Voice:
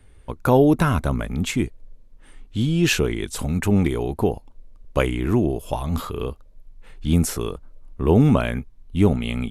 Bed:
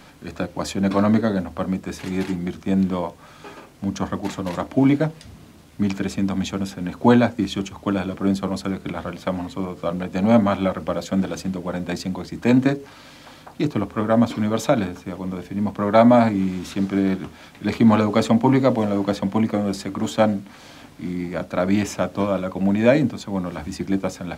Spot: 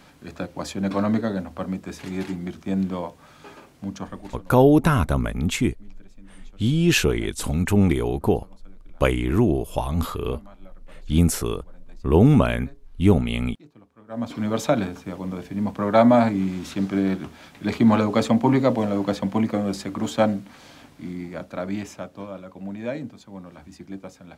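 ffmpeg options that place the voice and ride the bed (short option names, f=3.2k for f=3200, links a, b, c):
-filter_complex "[0:a]adelay=4050,volume=0.5dB[a];[1:a]volume=21.5dB,afade=t=out:st=3.71:d=0.82:silence=0.0668344,afade=t=in:st=14.07:d=0.45:silence=0.0501187,afade=t=out:st=20.29:d=1.91:silence=0.251189[b];[a][b]amix=inputs=2:normalize=0"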